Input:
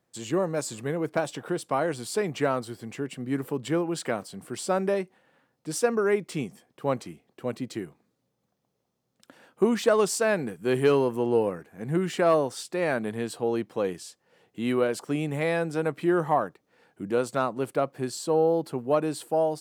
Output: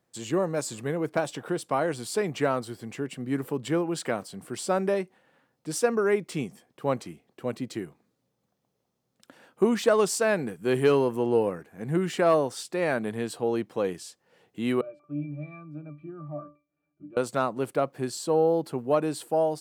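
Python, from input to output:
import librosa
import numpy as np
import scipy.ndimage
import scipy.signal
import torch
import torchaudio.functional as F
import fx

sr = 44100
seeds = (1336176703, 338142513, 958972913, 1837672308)

y = fx.octave_resonator(x, sr, note='D', decay_s=0.26, at=(14.81, 17.17))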